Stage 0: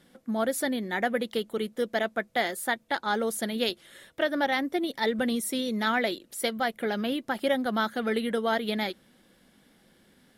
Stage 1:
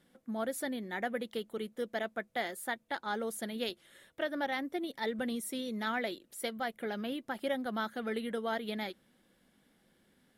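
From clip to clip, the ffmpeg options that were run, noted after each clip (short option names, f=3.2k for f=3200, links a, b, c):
-af "equalizer=f=4.9k:w=1.5:g=-2.5,volume=-8dB"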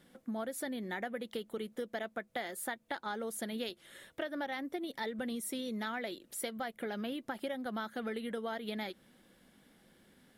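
-af "acompressor=threshold=-41dB:ratio=5,volume=5dB"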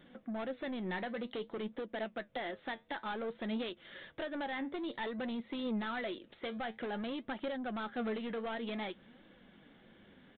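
-af "aresample=8000,asoftclip=type=tanh:threshold=-38.5dB,aresample=44100,flanger=delay=3:depth=8.3:regen=73:speed=0.54:shape=triangular,volume=8.5dB"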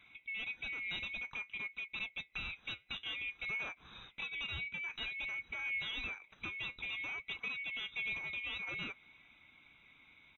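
-af "afftfilt=real='real(if(lt(b,920),b+92*(1-2*mod(floor(b/92),2)),b),0)':imag='imag(if(lt(b,920),b+92*(1-2*mod(floor(b/92),2)),b),0)':win_size=2048:overlap=0.75,lowshelf=f=450:g=3.5,volume=-3dB"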